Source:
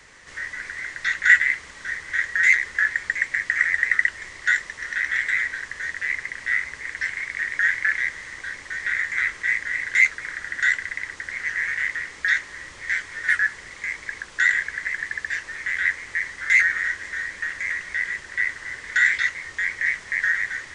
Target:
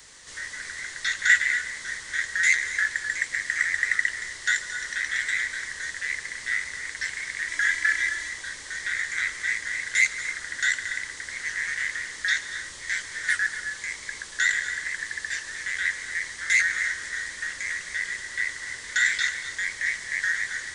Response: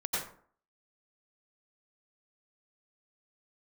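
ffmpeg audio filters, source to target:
-filter_complex "[0:a]asettb=1/sr,asplit=3[a][b][c];[a]atrim=end=7.484[d];[b]atrim=start=7.48:end=8.29,asetpts=PTS-STARTPTS,afade=t=in:d=0.004:c=qsin,afade=t=out:st=0.806:d=0.004:c=qsin,aecho=1:1:3:0.78,atrim=end_sample=35721[e];[c]atrim=start=8.286[f];[d][e]acrossfade=d=0.004:c1=hsin:c2=qsin[g];[g][f]acrossfade=d=0.004:c1=qsin:c2=hsin,asplit=2[h][i];[1:a]atrim=start_sample=2205,adelay=141[j];[i][j]afir=irnorm=-1:irlink=0,volume=-15dB[k];[h][k]amix=inputs=2:normalize=0,aexciter=amount=3.3:drive=5.1:freq=3.3k,volume=-4dB"

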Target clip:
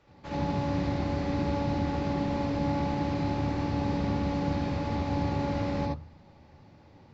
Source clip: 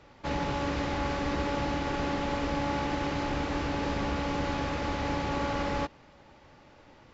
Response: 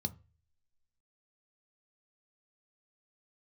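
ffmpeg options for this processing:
-filter_complex "[0:a]asplit=2[a][b];[1:a]atrim=start_sample=2205,highshelf=f=4.8k:g=-8,adelay=73[c];[b][c]afir=irnorm=-1:irlink=0,volume=2.5dB[d];[a][d]amix=inputs=2:normalize=0,volume=-8.5dB"

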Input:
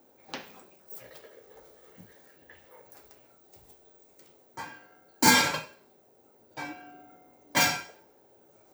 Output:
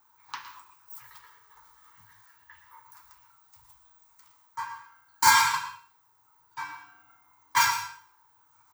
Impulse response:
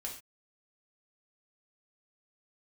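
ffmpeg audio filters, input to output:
-filter_complex "[0:a]firequalizer=gain_entry='entry(120,0);entry(200,-22);entry(300,-15);entry(630,-25);entry(950,15);entry(1500,7);entry(2500,1);entry(5400,4)':delay=0.05:min_phase=1,asplit=2[a][b];[1:a]atrim=start_sample=2205,asetrate=57330,aresample=44100,adelay=112[c];[b][c]afir=irnorm=-1:irlink=0,volume=-6.5dB[d];[a][d]amix=inputs=2:normalize=0,volume=-4.5dB"

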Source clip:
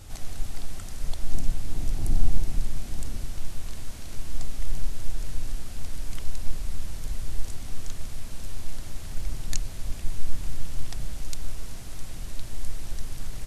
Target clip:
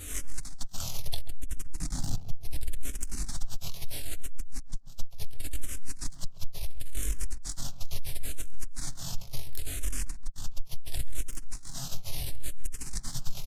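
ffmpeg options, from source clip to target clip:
-filter_complex "[0:a]afftfilt=real='re':imag='-im':win_size=2048:overlap=0.75,acompressor=threshold=-21dB:ratio=2.5,asoftclip=type=tanh:threshold=-29.5dB,asplit=2[a][b];[b]adelay=136,lowpass=f=1.4k:p=1,volume=-12dB,asplit=2[c][d];[d]adelay=136,lowpass=f=1.4k:p=1,volume=0.22,asplit=2[e][f];[f]adelay=136,lowpass=f=1.4k:p=1,volume=0.22[g];[a][c][e][g]amix=inputs=4:normalize=0,acrossover=split=400|3000[h][i][j];[i]acompressor=threshold=-47dB:ratio=4[k];[h][k][j]amix=inputs=3:normalize=0,highshelf=f=3k:g=10,aecho=1:1:7.2:0.32,asplit=2[l][m];[m]afreqshift=-0.72[n];[l][n]amix=inputs=2:normalize=1,volume=9.5dB"

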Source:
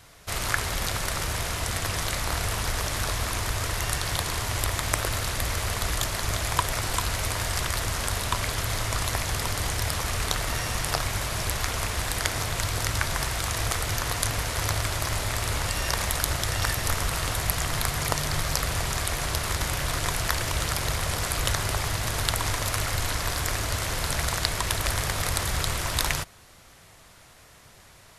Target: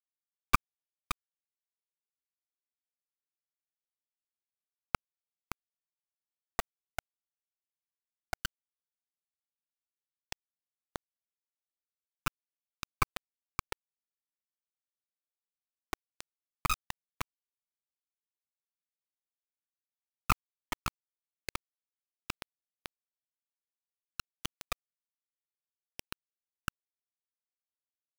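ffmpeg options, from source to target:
-filter_complex "[0:a]afftfilt=real='re*gte(hypot(re,im),0.141)':imag='im*gte(hypot(re,im),0.141)':win_size=1024:overlap=0.75,acompressor=threshold=-32dB:ratio=2.5,asplit=2[a][b];[b]aecho=0:1:568:0.398[c];[a][c]amix=inputs=2:normalize=0,asetrate=31183,aresample=44100,atempo=1.41421,bandpass=f=1.3k:t=q:w=3.9:csg=0,acrusher=bits=4:dc=4:mix=0:aa=0.000001,volume=15.5dB"

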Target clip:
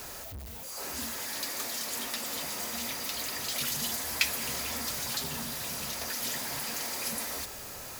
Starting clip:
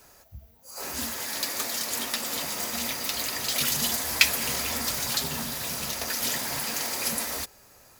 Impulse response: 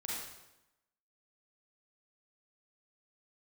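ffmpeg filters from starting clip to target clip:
-af "aeval=exprs='val(0)+0.5*0.0376*sgn(val(0))':c=same,volume=-8.5dB"

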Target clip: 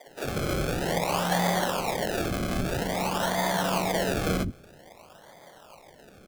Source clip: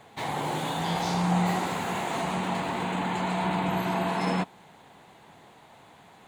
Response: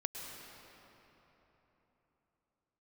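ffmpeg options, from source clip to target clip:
-filter_complex "[0:a]highpass=160,equalizer=f=570:w=3.5:g=12,acrusher=samples=32:mix=1:aa=0.000001:lfo=1:lforange=32:lforate=0.51,acrossover=split=290[a][b];[a]adelay=70[c];[c][b]amix=inputs=2:normalize=0"

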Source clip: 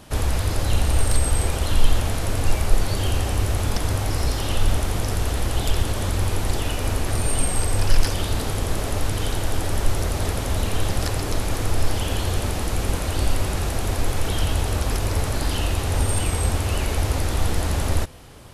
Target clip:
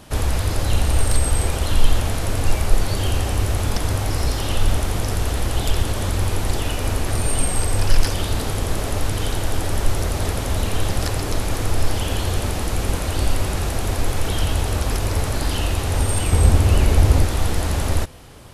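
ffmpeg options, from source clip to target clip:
-filter_complex "[0:a]asettb=1/sr,asplit=3[a][b][c];[a]atrim=end=16.314[d];[b]atrim=start=16.31:end=17.25,asetpts=PTS-STARTPTS,afade=t=in:d=0.004:c=qsin,afade=t=out:st=0.936:d=0.004:c=qsin,lowshelf=f=440:g=7.5[e];[c]atrim=start=17.246[f];[d][e]acrossfade=d=0.004:c1=hsin:c2=qsin[g];[g][f]acrossfade=d=0.004:c1=qsin:c2=hsin,volume=1.5dB"

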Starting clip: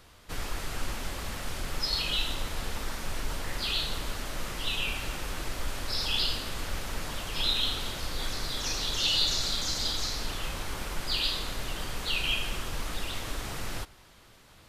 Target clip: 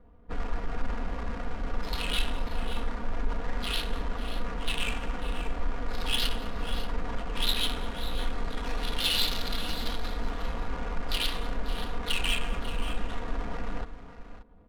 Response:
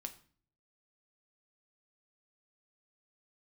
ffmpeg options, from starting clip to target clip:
-filter_complex "[0:a]equalizer=f=5.9k:t=o:w=0.74:g=-7.5,aecho=1:1:4.2:0.82,asoftclip=type=tanh:threshold=-15.5dB,adynamicsmooth=sensitivity=5:basefreq=510,asplit=2[a][b];[b]aecho=0:1:202|543|581:0.106|0.178|0.188[c];[a][c]amix=inputs=2:normalize=0,volume=1dB"

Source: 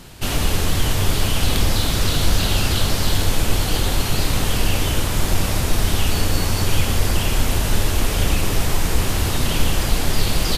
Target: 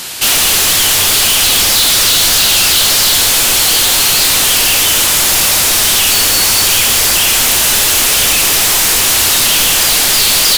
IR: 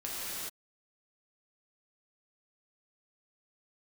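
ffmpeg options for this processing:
-filter_complex "[0:a]asplit=2[a][b];[b]highpass=f=720:p=1,volume=27dB,asoftclip=type=tanh:threshold=-3.5dB[c];[a][c]amix=inputs=2:normalize=0,lowpass=f=4.3k:p=1,volume=-6dB,crystalizer=i=5.5:c=0,volume=-7dB"

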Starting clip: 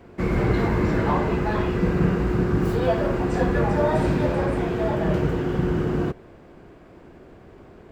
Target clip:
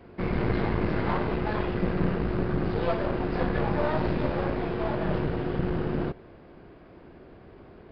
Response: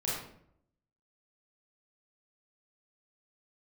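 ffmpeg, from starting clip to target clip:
-af "aeval=exprs='clip(val(0),-1,0.0299)':c=same,aresample=11025,aresample=44100,volume=-2.5dB"

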